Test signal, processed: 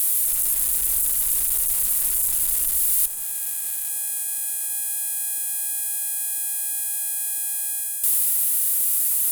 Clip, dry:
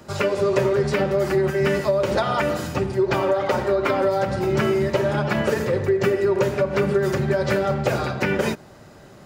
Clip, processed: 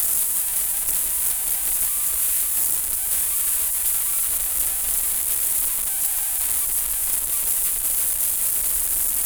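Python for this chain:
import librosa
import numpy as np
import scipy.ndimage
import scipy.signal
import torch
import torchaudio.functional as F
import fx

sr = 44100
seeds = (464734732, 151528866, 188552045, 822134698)

p1 = np.sign(x) * np.sqrt(np.mean(np.square(x)))
p2 = scipy.signal.sosfilt(scipy.signal.cheby2(4, 50, [120.0, 4500.0], 'bandstop', fs=sr, output='sos'), p1)
p3 = fx.peak_eq(p2, sr, hz=6000.0, db=14.0, octaves=2.8)
p4 = fx.rider(p3, sr, range_db=4, speed_s=0.5)
p5 = fx.tube_stage(p4, sr, drive_db=26.0, bias=0.45)
p6 = fx.high_shelf(p5, sr, hz=2600.0, db=12.0)
p7 = p6 + fx.echo_bbd(p6, sr, ms=149, stages=1024, feedback_pct=53, wet_db=-5, dry=0)
y = p7 * 10.0 ** (1.5 / 20.0)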